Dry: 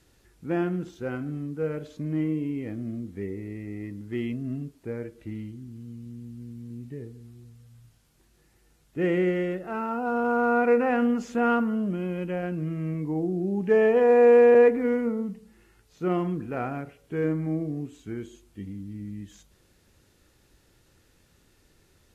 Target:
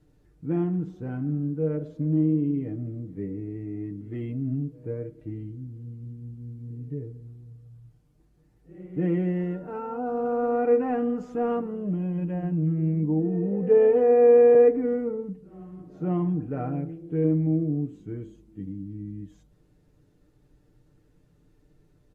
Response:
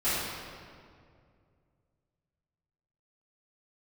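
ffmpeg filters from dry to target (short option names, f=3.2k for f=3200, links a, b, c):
-filter_complex "[0:a]tiltshelf=f=920:g=9.5,aecho=1:1:6.7:0.72,asplit=2[a][b];[b]asetrate=45938,aresample=44100[c];[1:a]atrim=start_sample=2205,adelay=37[d];[c][d]afir=irnorm=-1:irlink=0,volume=-30dB[e];[a][e]amix=inputs=2:normalize=0,volume=-7.5dB"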